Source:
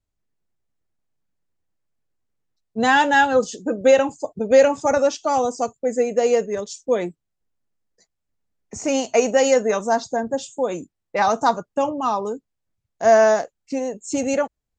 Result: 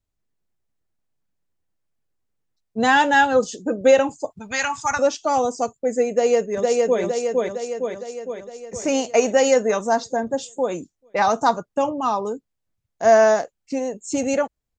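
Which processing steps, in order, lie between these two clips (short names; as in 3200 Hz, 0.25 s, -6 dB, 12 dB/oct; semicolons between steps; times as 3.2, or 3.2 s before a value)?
4.3–4.99 EQ curve 110 Hz 0 dB, 530 Hz -23 dB, 930 Hz +4 dB; 6.11–7.02 echo throw 0.46 s, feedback 60%, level -1.5 dB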